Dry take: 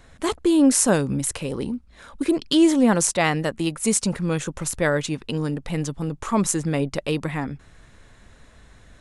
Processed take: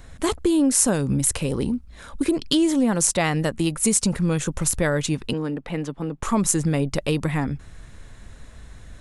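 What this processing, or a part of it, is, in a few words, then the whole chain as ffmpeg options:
ASMR close-microphone chain: -filter_complex "[0:a]lowshelf=f=160:g=8,acompressor=threshold=-19dB:ratio=4,highshelf=f=7.6k:g=7,asettb=1/sr,asplit=3[a][b][c];[a]atrim=end=5.334[d];[b]atrim=start=5.33:end=6.23,asetpts=PTS-STARTPTS,afade=t=in:d=0.004:c=qsin,afade=t=out:st=0.896:d=0.004:c=qsin,acrossover=split=200 3400:gain=0.158 1 0.178[e][f][g];[e][f][g]amix=inputs=3:normalize=0[h];[c]atrim=start=6.226[i];[d][h]acrossfade=d=0.004:c1=hsin:c2=qsin[j];[j][i]acrossfade=d=0.004:c1=qsin:c2=hsin,volume=1.5dB"

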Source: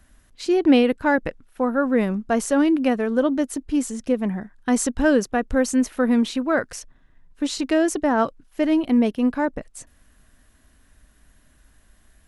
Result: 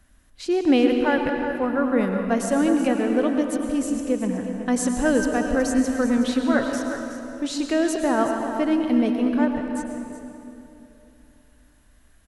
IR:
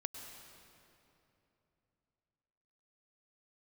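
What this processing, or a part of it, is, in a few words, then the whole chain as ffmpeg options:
cave: -filter_complex "[0:a]asettb=1/sr,asplit=3[a][b][c];[a]atrim=end=6.174[d];[b]atrim=start=6.17:end=6.66,asetpts=PTS-STARTPTS,afade=t=in:d=0.004:c=qsin,afade=t=out:st=0.486:d=0.004:c=qsin,aecho=1:1:7.2:0.67,atrim=end_sample=21609[e];[c]atrim=start=6.656[f];[d][e]acrossfade=d=0.004:c1=hsin:c2=qsin[g];[g][f]acrossfade=d=0.004:c1=qsin:c2=hsin,aecho=1:1:371:0.266[h];[1:a]atrim=start_sample=2205[i];[h][i]afir=irnorm=-1:irlink=0"

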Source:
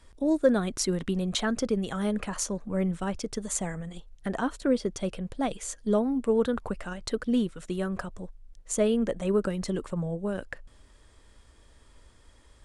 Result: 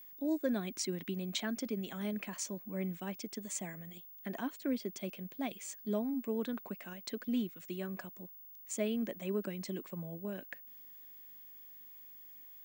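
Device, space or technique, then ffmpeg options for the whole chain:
old television with a line whistle: -af "highpass=f=180:w=0.5412,highpass=f=180:w=1.3066,equalizer=f=490:t=q:w=4:g=-9,equalizer=f=860:t=q:w=4:g=-5,equalizer=f=1.3k:t=q:w=4:g=-9,equalizer=f=2.3k:t=q:w=4:g=6,lowpass=f=8.6k:w=0.5412,lowpass=f=8.6k:w=1.3066,aeval=exprs='val(0)+0.00708*sin(2*PI*15625*n/s)':c=same,volume=-7.5dB"

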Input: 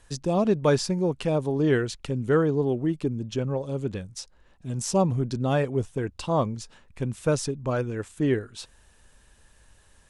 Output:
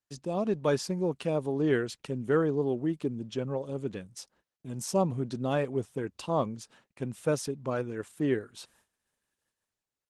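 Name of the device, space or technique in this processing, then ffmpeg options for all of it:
video call: -af "highpass=150,dynaudnorm=f=270:g=5:m=3.5dB,agate=range=-31dB:threshold=-55dB:ratio=16:detection=peak,volume=-7dB" -ar 48000 -c:a libopus -b:a 20k

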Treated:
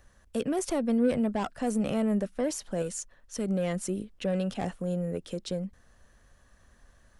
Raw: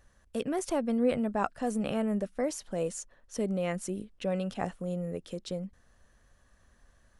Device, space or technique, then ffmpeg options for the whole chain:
one-band saturation: -filter_complex "[0:a]acrossover=split=410|4200[a][b][c];[b]asoftclip=type=tanh:threshold=-32.5dB[d];[a][d][c]amix=inputs=3:normalize=0,asettb=1/sr,asplit=3[e][f][g];[e]atrim=end=2.824[h];[f]atrim=start=2.82:end=3.48,asetpts=PTS-STARTPTS,afade=t=in:d=0.004:c=qsin,afade=t=out:st=0.656:d=0.004:c=qsin,equalizer=f=470:t=o:w=2.6:g=-5[i];[g]atrim=start=3.476[j];[h][i]acrossfade=d=0.004:c1=hsin:c2=qsin[k];[k][j]acrossfade=d=0.004:c1=qsin:c2=hsin,volume=3.5dB"

